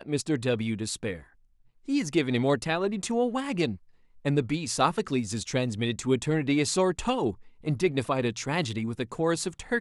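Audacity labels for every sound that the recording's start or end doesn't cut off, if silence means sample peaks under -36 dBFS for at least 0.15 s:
1.880000	3.760000	sound
4.250000	7.320000	sound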